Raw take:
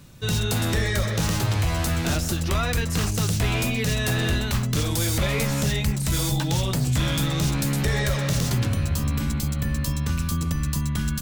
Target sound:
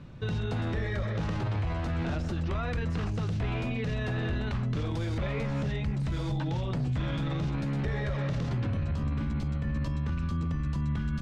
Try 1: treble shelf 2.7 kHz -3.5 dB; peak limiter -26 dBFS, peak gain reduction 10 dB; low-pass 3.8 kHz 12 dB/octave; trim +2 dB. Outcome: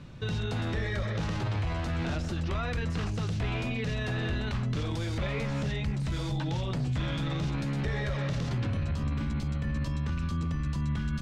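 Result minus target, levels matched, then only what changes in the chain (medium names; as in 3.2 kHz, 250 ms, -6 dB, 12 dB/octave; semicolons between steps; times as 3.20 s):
4 kHz band +4.5 dB
change: treble shelf 2.7 kHz -11.5 dB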